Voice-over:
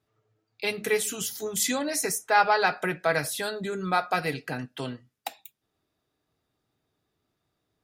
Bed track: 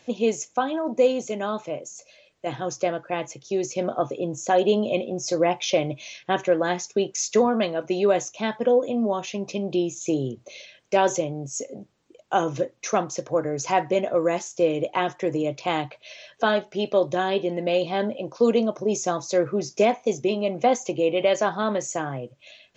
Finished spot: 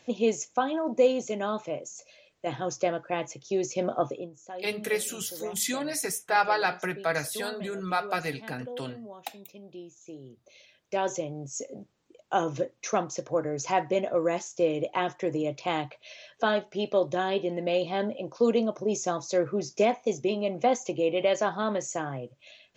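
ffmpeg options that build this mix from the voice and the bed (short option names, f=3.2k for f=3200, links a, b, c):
-filter_complex "[0:a]adelay=4000,volume=-3dB[a];[1:a]volume=13.5dB,afade=t=out:st=4.08:d=0.22:silence=0.133352,afade=t=in:st=10.23:d=1.48:silence=0.158489[b];[a][b]amix=inputs=2:normalize=0"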